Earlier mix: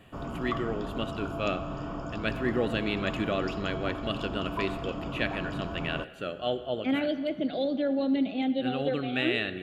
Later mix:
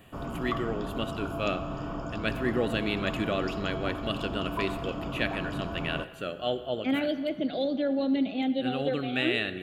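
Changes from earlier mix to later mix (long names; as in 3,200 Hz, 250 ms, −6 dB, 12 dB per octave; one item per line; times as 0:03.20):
speech: add high-shelf EQ 8,700 Hz +11.5 dB
background: send on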